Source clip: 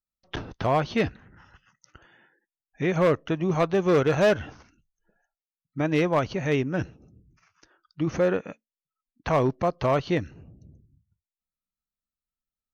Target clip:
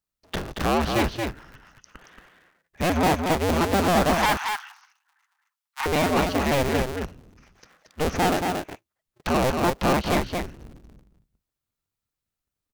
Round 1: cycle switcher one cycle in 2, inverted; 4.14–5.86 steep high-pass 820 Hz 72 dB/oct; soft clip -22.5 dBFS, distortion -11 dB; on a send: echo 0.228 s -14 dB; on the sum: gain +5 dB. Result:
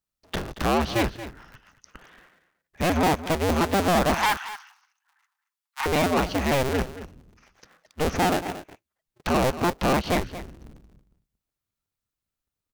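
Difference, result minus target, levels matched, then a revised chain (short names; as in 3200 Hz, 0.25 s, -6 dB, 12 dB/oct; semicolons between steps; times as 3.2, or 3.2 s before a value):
echo-to-direct -9 dB
cycle switcher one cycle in 2, inverted; 4.14–5.86 steep high-pass 820 Hz 72 dB/oct; soft clip -22.5 dBFS, distortion -11 dB; on a send: echo 0.228 s -5 dB; on the sum: gain +5 dB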